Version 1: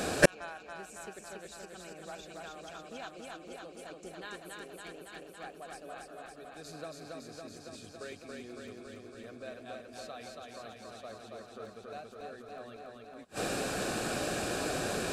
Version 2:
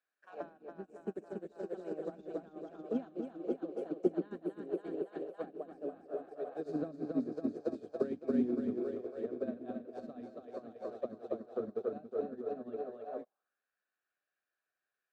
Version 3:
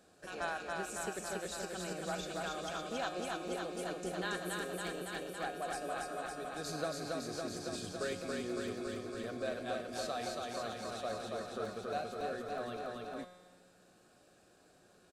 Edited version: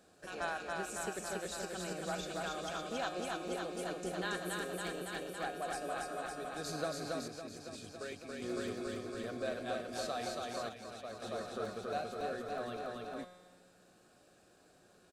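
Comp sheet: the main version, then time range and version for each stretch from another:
3
7.28–8.42 s: from 1
10.69–11.22 s: from 1
not used: 2

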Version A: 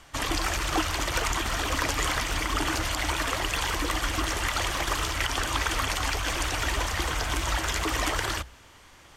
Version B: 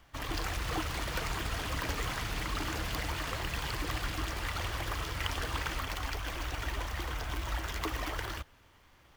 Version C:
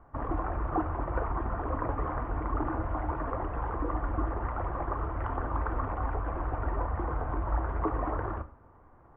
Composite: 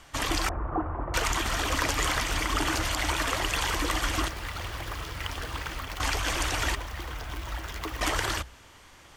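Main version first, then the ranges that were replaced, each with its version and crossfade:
A
0.49–1.14 s: from C
4.28–6.00 s: from B
6.75–8.01 s: from B

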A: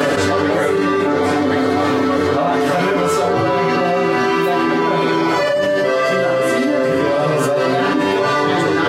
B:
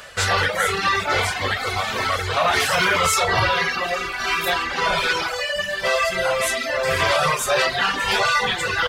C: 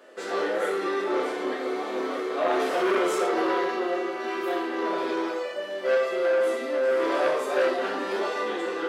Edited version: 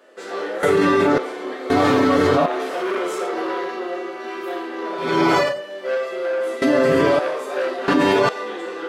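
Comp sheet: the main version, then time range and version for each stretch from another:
C
0.63–1.18 s: from A
1.70–2.46 s: from A
5.09–5.50 s: from A, crossfade 0.24 s
6.62–7.19 s: from A
7.88–8.29 s: from A
not used: B

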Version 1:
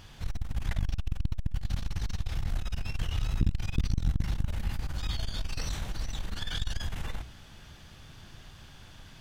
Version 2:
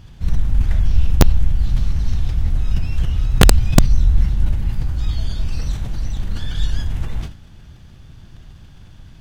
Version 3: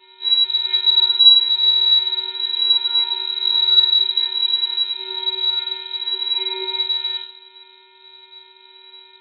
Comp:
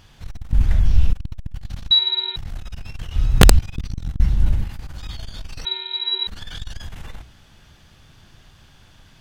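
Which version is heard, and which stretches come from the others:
1
0.53–1.13 s: from 2
1.91–2.36 s: from 3
3.16–3.59 s: from 2
4.20–4.64 s: from 2
5.65–6.27 s: from 3

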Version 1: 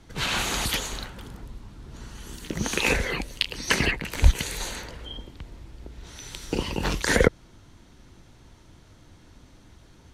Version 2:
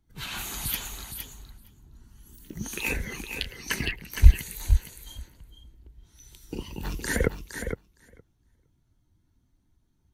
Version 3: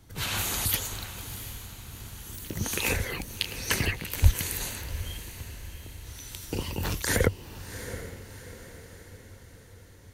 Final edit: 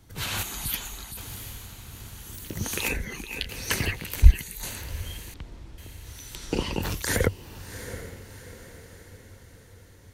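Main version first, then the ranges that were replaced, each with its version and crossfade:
3
0.43–1.17 s: from 2
2.88–3.49 s: from 2
4.22–4.63 s: from 2
5.34–5.78 s: from 1
6.35–6.82 s: from 1

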